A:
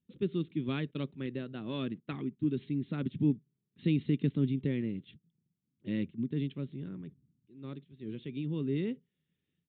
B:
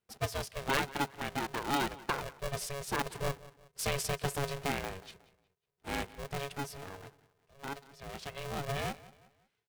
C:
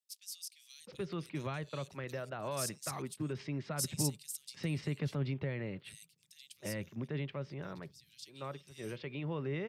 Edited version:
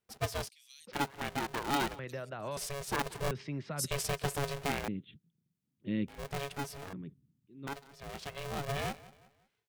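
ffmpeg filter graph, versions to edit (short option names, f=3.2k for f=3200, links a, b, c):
-filter_complex "[2:a]asplit=3[a][b][c];[0:a]asplit=2[d][e];[1:a]asplit=6[f][g][h][i][j][k];[f]atrim=end=0.492[l];[a]atrim=start=0.488:end=0.932[m];[g]atrim=start=0.928:end=1.992[n];[b]atrim=start=1.988:end=2.572[o];[h]atrim=start=2.568:end=3.312[p];[c]atrim=start=3.308:end=3.912[q];[i]atrim=start=3.908:end=4.882[r];[d]atrim=start=4.878:end=6.082[s];[j]atrim=start=6.078:end=6.932[t];[e]atrim=start=6.928:end=7.672[u];[k]atrim=start=7.668[v];[l][m]acrossfade=d=0.004:c1=hsin:c2=hsin[w];[w][n]acrossfade=d=0.004:c1=hsin:c2=hsin[x];[x][o]acrossfade=d=0.004:c1=hsin:c2=hsin[y];[y][p]acrossfade=d=0.004:c1=hsin:c2=hsin[z];[z][q]acrossfade=d=0.004:c1=hsin:c2=hsin[aa];[aa][r]acrossfade=d=0.004:c1=hsin:c2=hsin[ab];[ab][s]acrossfade=d=0.004:c1=hsin:c2=hsin[ac];[ac][t]acrossfade=d=0.004:c1=hsin:c2=hsin[ad];[ad][u]acrossfade=d=0.004:c1=hsin:c2=hsin[ae];[ae][v]acrossfade=d=0.004:c1=hsin:c2=hsin"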